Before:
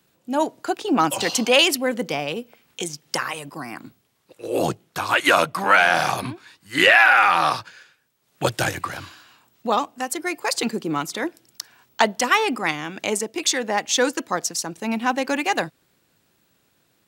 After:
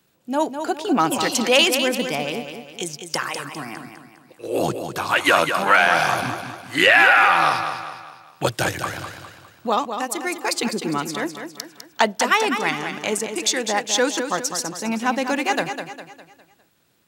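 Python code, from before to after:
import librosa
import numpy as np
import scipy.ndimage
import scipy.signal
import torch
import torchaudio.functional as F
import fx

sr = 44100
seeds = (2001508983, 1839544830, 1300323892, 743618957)

y = fx.echo_feedback(x, sr, ms=203, feedback_pct=43, wet_db=-8.0)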